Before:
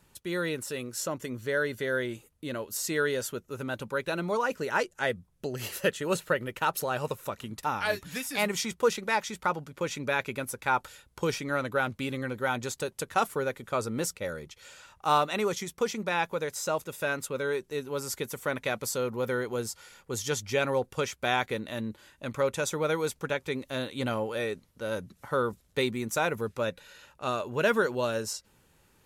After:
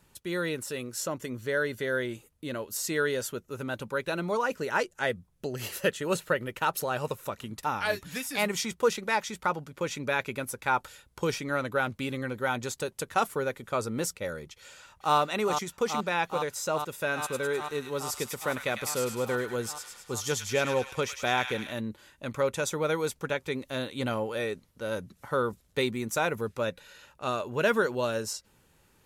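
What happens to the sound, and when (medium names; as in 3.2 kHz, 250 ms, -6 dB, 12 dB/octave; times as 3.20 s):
14.58–15.16 s: echo throw 420 ms, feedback 85%, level -6.5 dB
17.03–21.73 s: feedback echo behind a high-pass 103 ms, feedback 58%, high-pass 1.8 kHz, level -5 dB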